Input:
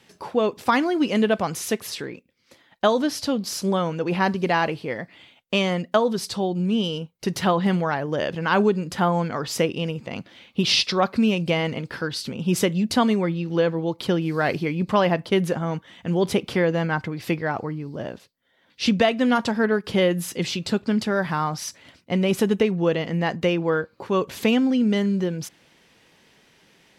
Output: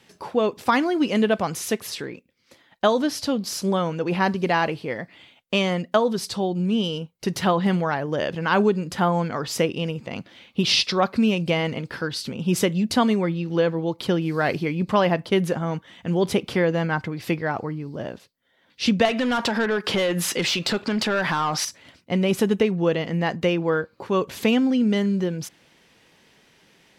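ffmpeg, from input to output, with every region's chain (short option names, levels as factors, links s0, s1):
-filter_complex "[0:a]asettb=1/sr,asplit=3[s0][s1][s2];[s0]atrim=end=19.054[s3];[s1]atrim=start=19.05:end=21.65,asetpts=PTS-STARTPTS,afade=t=in:d=0.004:c=qsin,afade=t=out:st=2.596:d=0.004:c=qsin,asplit=2[s4][s5];[s5]highpass=f=720:p=1,volume=8.91,asoftclip=type=tanh:threshold=0.422[s6];[s4][s6]amix=inputs=2:normalize=0,lowpass=f=4600:p=1,volume=0.501,acompressor=threshold=0.1:ratio=4:attack=3.2:release=140:knee=1:detection=peak[s7];[s2]atrim=start=21.646[s8];[s3][s7]acrossfade=d=0.004:c1=hsin:c2=qsin[s9];[s9][s8]acrossfade=d=0.004:c1=qsin:c2=hsin"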